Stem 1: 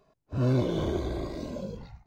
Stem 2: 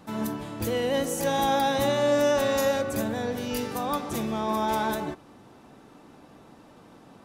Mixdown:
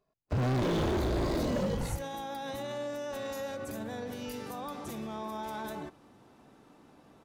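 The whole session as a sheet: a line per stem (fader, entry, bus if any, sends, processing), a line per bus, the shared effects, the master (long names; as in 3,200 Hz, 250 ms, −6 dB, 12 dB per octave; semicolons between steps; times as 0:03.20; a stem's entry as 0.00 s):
−4.0 dB, 0.00 s, no send, leveller curve on the samples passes 5
−7.0 dB, 0.75 s, no send, brickwall limiter −23.5 dBFS, peak gain reduction 10 dB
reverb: not used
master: downward compressor, threshold −28 dBFS, peak gain reduction 6.5 dB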